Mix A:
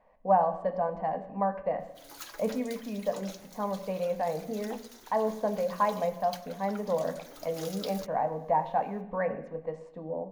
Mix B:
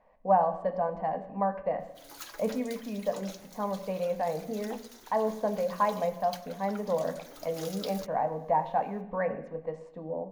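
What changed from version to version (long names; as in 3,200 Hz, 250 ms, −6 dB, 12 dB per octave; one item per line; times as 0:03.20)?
nothing changed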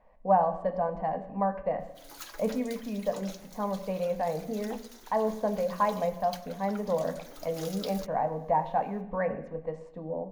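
speech: add low-shelf EQ 100 Hz +9.5 dB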